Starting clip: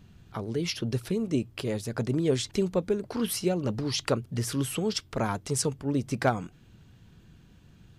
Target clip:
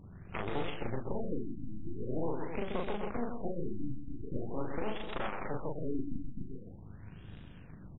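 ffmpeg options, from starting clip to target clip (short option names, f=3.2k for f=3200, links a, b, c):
-filter_complex "[0:a]aeval=exprs='clip(val(0),-1,0.0501)':c=same,acompressor=threshold=-36dB:ratio=6,acrusher=bits=3:mode=log:mix=0:aa=0.000001,aeval=exprs='0.158*(cos(1*acos(clip(val(0)/0.158,-1,1)))-cos(1*PI/2))+0.0708*(cos(8*acos(clip(val(0)/0.158,-1,1)))-cos(8*PI/2))':c=same,asplit=2[a][b];[b]adelay=38,volume=-2.5dB[c];[a][c]amix=inputs=2:normalize=0,aecho=1:1:128.3|253.6:0.447|0.355,alimiter=limit=-22dB:level=0:latency=1:release=352,afftfilt=real='re*lt(b*sr/1024,310*pow(3900/310,0.5+0.5*sin(2*PI*0.44*pts/sr)))':imag='im*lt(b*sr/1024,310*pow(3900/310,0.5+0.5*sin(2*PI*0.44*pts/sr)))':win_size=1024:overlap=0.75,volume=1dB"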